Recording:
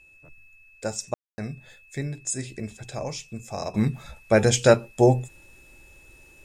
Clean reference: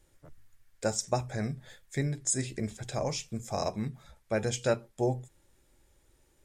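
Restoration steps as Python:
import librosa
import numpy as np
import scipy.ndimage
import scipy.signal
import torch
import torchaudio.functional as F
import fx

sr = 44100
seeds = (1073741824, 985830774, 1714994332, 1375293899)

y = fx.notch(x, sr, hz=2600.0, q=30.0)
y = fx.fix_ambience(y, sr, seeds[0], print_start_s=0.01, print_end_s=0.51, start_s=1.14, end_s=1.38)
y = fx.gain(y, sr, db=fx.steps((0.0, 0.0), (3.74, -11.5)))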